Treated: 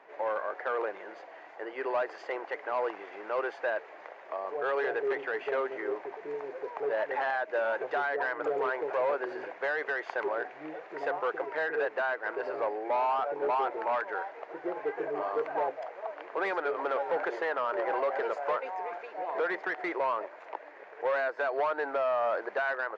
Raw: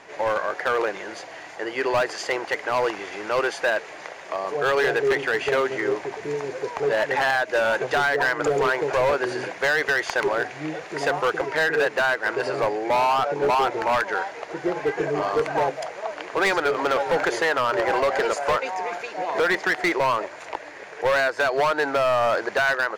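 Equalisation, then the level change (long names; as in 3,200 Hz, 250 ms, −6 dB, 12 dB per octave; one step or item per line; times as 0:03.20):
high-pass filter 430 Hz 12 dB per octave
head-to-tape spacing loss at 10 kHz 24 dB
high-shelf EQ 3,100 Hz −10.5 dB
−4.5 dB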